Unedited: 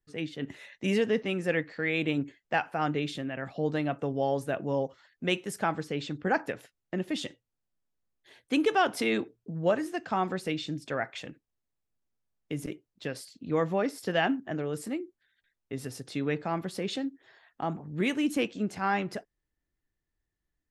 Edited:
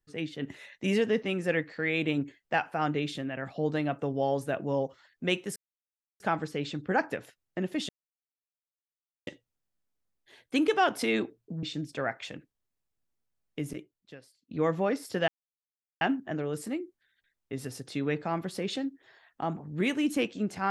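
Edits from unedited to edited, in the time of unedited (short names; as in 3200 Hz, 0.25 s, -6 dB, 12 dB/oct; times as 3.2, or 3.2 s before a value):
5.56 insert silence 0.64 s
7.25 insert silence 1.38 s
9.61–10.56 cut
12.56–13.44 fade out quadratic, to -23.5 dB
14.21 insert silence 0.73 s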